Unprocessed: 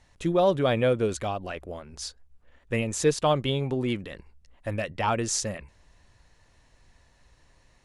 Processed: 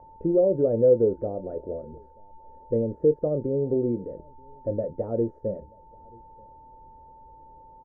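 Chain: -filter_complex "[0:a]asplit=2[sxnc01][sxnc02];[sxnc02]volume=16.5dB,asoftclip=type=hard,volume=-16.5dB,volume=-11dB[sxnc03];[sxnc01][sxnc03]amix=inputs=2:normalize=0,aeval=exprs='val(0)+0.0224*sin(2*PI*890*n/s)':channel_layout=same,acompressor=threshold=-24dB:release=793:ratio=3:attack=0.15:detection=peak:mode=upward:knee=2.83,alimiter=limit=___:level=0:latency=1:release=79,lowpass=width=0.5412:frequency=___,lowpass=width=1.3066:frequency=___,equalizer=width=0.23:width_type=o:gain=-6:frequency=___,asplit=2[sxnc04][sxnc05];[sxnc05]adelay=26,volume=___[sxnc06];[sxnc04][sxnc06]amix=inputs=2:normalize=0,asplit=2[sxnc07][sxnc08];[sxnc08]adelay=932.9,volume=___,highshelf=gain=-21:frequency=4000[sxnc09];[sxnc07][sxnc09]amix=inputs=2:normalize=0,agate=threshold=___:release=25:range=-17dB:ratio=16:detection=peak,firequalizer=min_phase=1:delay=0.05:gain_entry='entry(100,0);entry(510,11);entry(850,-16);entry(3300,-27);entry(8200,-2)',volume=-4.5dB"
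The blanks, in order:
-15.5dB, 1400, 1400, 1100, -11.5dB, -28dB, -48dB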